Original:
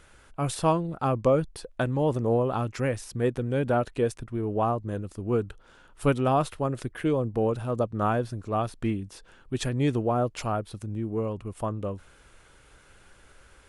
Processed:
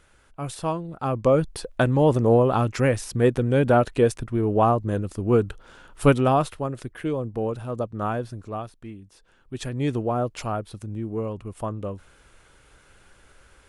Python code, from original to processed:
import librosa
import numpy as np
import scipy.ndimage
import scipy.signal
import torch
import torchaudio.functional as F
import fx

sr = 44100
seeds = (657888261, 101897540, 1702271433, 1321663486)

y = fx.gain(x, sr, db=fx.line((0.85, -3.5), (1.55, 6.5), (6.08, 6.5), (6.74, -1.5), (8.45, -1.5), (8.84, -12.0), (9.92, 0.5)))